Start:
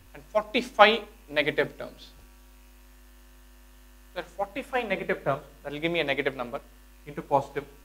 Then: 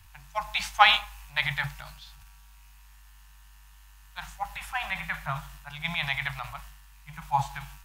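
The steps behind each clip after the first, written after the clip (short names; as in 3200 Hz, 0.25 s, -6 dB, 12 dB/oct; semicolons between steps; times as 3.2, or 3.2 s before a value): elliptic band-stop 150–820 Hz, stop band 40 dB; transient shaper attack +1 dB, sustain +8 dB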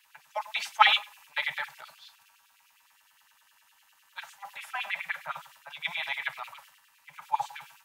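LFO high-pass sine 9.8 Hz 360–3200 Hz; notch comb 360 Hz; gain -3.5 dB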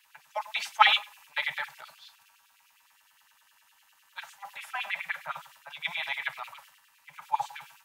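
nothing audible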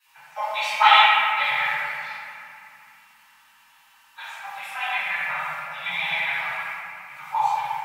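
reverb RT60 2.9 s, pre-delay 3 ms, DRR -18 dB; gain -13 dB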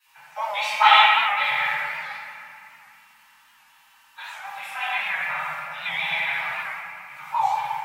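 record warp 78 rpm, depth 100 cents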